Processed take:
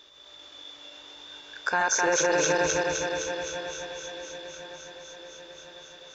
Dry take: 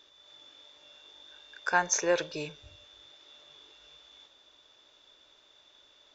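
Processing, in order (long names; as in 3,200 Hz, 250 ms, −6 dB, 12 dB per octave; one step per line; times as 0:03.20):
feedback delay that plays each chunk backwards 129 ms, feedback 80%, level −2 dB
brickwall limiter −20.5 dBFS, peak gain reduction 9 dB
on a send: feedback echo with a long and a short gap by turns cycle 1,053 ms, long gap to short 3 to 1, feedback 51%, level −15 dB
on the sum: level +6 dB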